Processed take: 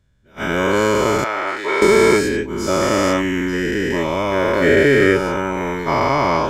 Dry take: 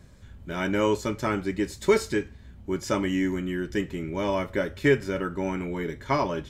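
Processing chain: every event in the spectrogram widened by 480 ms; gate -25 dBFS, range -22 dB; 1.24–1.82 s: three-band isolator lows -23 dB, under 510 Hz, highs -16 dB, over 4 kHz; trim +2 dB

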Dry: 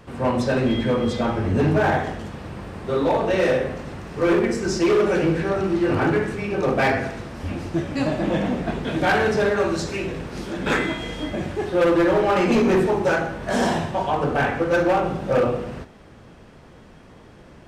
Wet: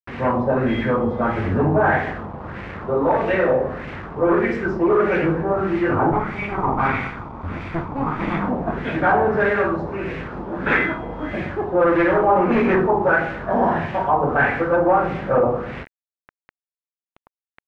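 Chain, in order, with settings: 6.12–8.48 s: comb filter that takes the minimum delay 0.87 ms; word length cut 6-bit, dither none; LFO low-pass sine 1.6 Hz 890–2200 Hz

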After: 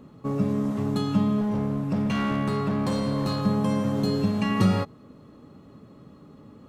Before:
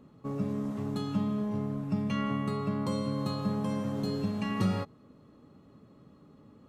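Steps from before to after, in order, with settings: 1.41–3.46 s: overload inside the chain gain 29 dB; trim +7.5 dB

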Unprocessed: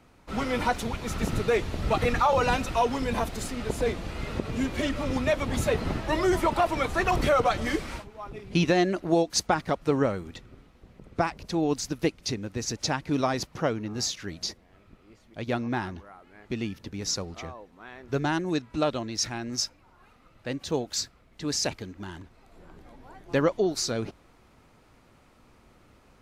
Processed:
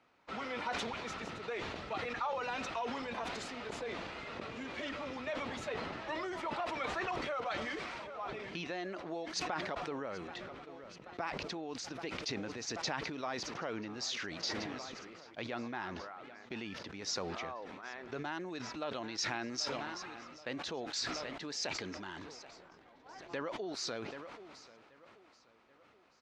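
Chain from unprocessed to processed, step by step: distance through air 140 m; feedback delay 781 ms, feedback 59%, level -24 dB; gate -47 dBFS, range -7 dB; compression 6:1, threshold -34 dBFS, peak gain reduction 15 dB; high-pass 820 Hz 6 dB/octave; decay stretcher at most 24 dB/s; trim +1.5 dB

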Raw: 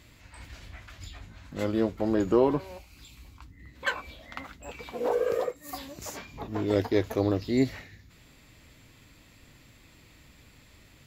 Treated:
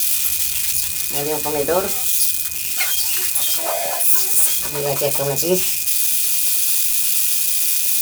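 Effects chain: zero-crossing glitches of -17 dBFS; treble shelf 2.8 kHz +10 dB; in parallel at +1 dB: peak limiter -16 dBFS, peak gain reduction 10.5 dB; on the sum: whistle 1.8 kHz -35 dBFS; on a send at -4 dB: reverberation, pre-delay 3 ms; on the sum: wide varispeed 1.38×; trim -1.5 dB

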